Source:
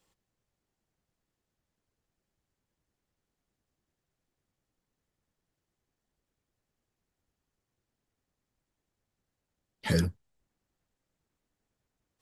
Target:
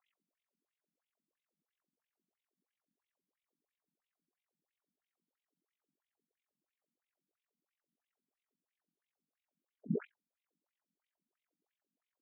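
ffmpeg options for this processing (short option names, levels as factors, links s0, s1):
-af "tremolo=f=45:d=0.974,afftfilt=real='re*between(b*sr/1024,200*pow(2900/200,0.5+0.5*sin(2*PI*3*pts/sr))/1.41,200*pow(2900/200,0.5+0.5*sin(2*PI*3*pts/sr))*1.41)':imag='im*between(b*sr/1024,200*pow(2900/200,0.5+0.5*sin(2*PI*3*pts/sr))/1.41,200*pow(2900/200,0.5+0.5*sin(2*PI*3*pts/sr))*1.41)':win_size=1024:overlap=0.75,volume=1.58"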